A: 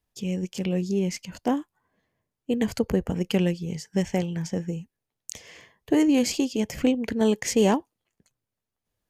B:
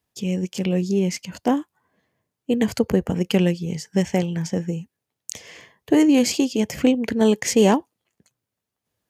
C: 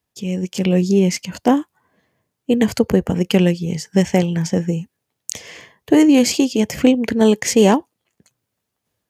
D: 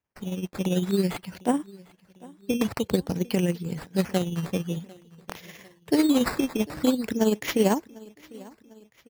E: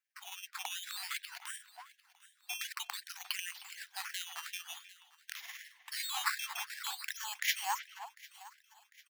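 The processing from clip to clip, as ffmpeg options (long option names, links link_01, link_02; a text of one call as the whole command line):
ffmpeg -i in.wav -af "highpass=84,volume=4.5dB" out.wav
ffmpeg -i in.wav -af "dynaudnorm=framelen=210:gausssize=5:maxgain=7dB" out.wav
ffmpeg -i in.wav -af "acrusher=samples=10:mix=1:aa=0.000001:lfo=1:lforange=10:lforate=0.5,tremolo=f=18:d=0.51,aecho=1:1:749|1498|2247:0.075|0.0375|0.0187,volume=-7dB" out.wav
ffmpeg -i in.wav -filter_complex "[0:a]asplit=2[link_01][link_02];[link_02]adelay=310,highpass=300,lowpass=3400,asoftclip=type=hard:threshold=-18.5dB,volume=-15dB[link_03];[link_01][link_03]amix=inputs=2:normalize=0,alimiter=limit=-18.5dB:level=0:latency=1:release=20,afftfilt=real='re*gte(b*sr/1024,660*pow(1600/660,0.5+0.5*sin(2*PI*2.7*pts/sr)))':imag='im*gte(b*sr/1024,660*pow(1600/660,0.5+0.5*sin(2*PI*2.7*pts/sr)))':win_size=1024:overlap=0.75" out.wav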